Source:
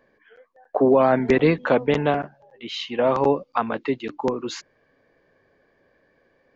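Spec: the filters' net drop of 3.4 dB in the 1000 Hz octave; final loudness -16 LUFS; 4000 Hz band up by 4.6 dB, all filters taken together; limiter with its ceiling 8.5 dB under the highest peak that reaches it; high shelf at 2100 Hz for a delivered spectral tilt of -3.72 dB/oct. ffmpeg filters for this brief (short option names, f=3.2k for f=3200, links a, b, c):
-af "equalizer=f=1k:t=o:g=-5.5,highshelf=f=2.1k:g=3.5,equalizer=f=4k:t=o:g=3,volume=11dB,alimiter=limit=-4.5dB:level=0:latency=1"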